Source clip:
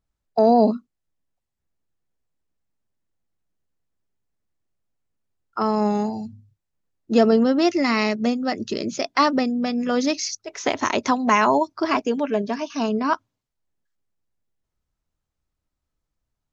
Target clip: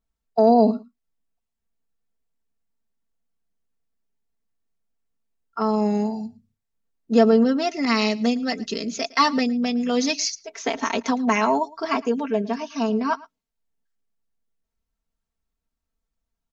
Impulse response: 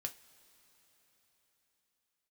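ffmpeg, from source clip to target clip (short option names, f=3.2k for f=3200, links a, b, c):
-filter_complex "[0:a]aecho=1:1:4.4:0.81,aecho=1:1:111:0.0841,asettb=1/sr,asplit=3[a][b][c];[a]atrim=end=7.854[d];[b]atrim=start=7.85:end=10.3,asetpts=PTS-STARTPTS,afade=t=in:d=0.004:c=qsin,afade=t=out:st=2.446:d=0.004:c=qsin,adynamicequalizer=threshold=0.0282:dfrequency=1800:dqfactor=0.7:tfrequency=1800:tqfactor=0.7:attack=5:release=100:ratio=0.375:range=3:mode=boostabove:tftype=highshelf[e];[c]atrim=start=10.296[f];[d][e]acrossfade=d=0.004:c1=hsin:c2=qsin[g];[g][f]acrossfade=d=0.004:c1=qsin:c2=hsin,volume=-4.5dB"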